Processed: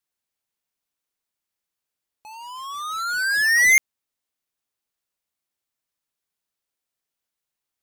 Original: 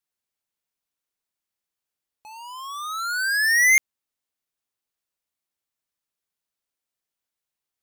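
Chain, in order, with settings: 2.33–3.73 s: decimation joined by straight lines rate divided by 2×; trim +1.5 dB

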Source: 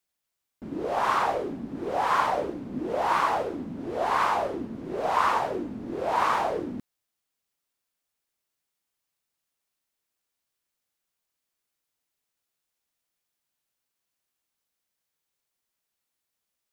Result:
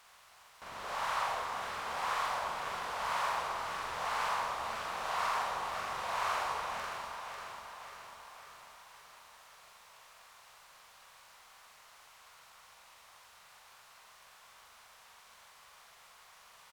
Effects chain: spectral levelling over time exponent 0.4; amplifier tone stack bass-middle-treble 10-0-10; hum notches 50/100/150/200/250 Hz; doubling 44 ms -2 dB; echo whose repeats swap between lows and highs 272 ms, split 1.1 kHz, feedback 75%, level -3 dB; trim -8 dB

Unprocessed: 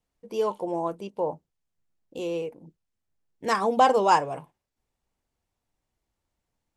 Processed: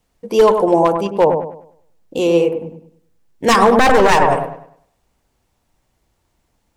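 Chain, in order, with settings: one-sided wavefolder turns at -19.5 dBFS; feedback echo behind a low-pass 100 ms, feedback 34%, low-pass 1.5 kHz, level -6 dB; loudness maximiser +16 dB; trim -1 dB

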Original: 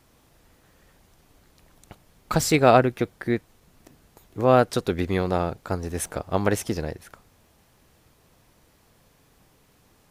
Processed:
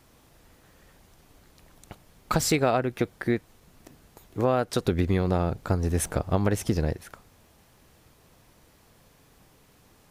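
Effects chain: 4.85–6.93 s: bass shelf 230 Hz +8.5 dB; compression 6:1, threshold -21 dBFS, peak gain reduction 10.5 dB; trim +1.5 dB

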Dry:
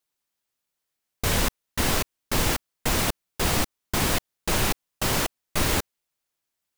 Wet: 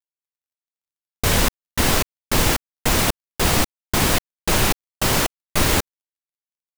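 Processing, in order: companding laws mixed up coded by A; trim +6 dB

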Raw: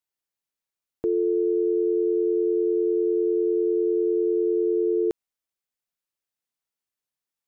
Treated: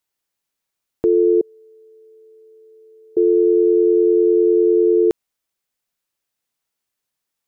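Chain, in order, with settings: 1.41–3.17 s: inverse Chebyshev high-pass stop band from 400 Hz, stop band 40 dB; trim +8.5 dB

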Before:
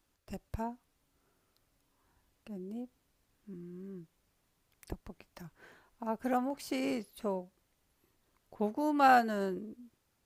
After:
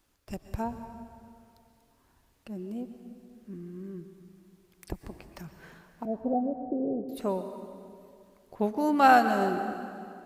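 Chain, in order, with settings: 6.05–7.09 s: Chebyshev low-pass 740 Hz, order 8; plate-style reverb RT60 2.4 s, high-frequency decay 0.8×, pre-delay 105 ms, DRR 8.5 dB; trim +5 dB

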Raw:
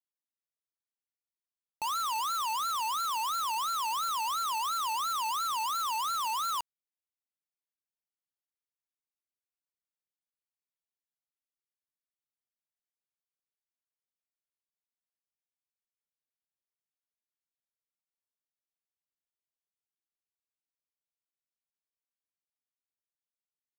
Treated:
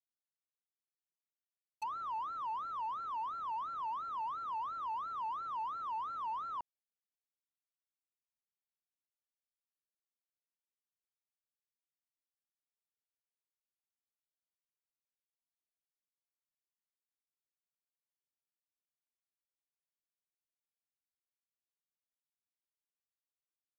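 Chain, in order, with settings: expander -25 dBFS; low-pass that closes with the level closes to 950 Hz, closed at -46.5 dBFS; trim +10.5 dB

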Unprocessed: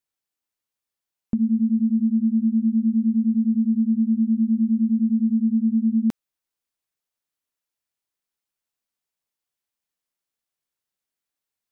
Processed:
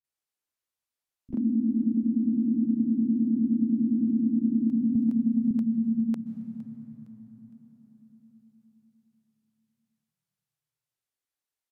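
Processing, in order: resampled via 32 kHz; in parallel at -1 dB: level held to a coarse grid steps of 10 dB; on the sum: frequency-shifting echo 461 ms, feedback 42%, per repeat -36 Hz, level -19 dB; on a send at -13.5 dB: reverberation RT60 5.6 s, pre-delay 118 ms; on the sum: ever faster or slower copies 115 ms, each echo +2 st, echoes 3, each echo -6 dB; bands offset in time lows, highs 40 ms, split 170 Hz; 4.95–5.51 s: three bands compressed up and down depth 70%; trim -9 dB

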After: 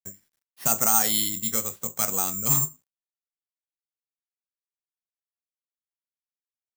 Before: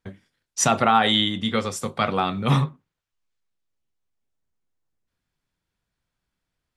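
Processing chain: careless resampling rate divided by 6×, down filtered, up zero stuff; bit crusher 9-bit; trim -10.5 dB

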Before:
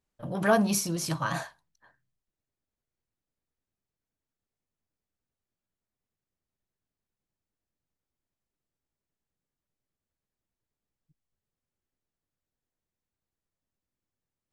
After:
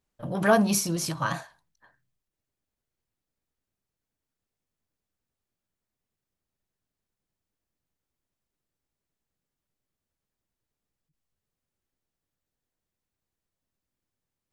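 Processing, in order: endings held to a fixed fall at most 160 dB/s; trim +2.5 dB

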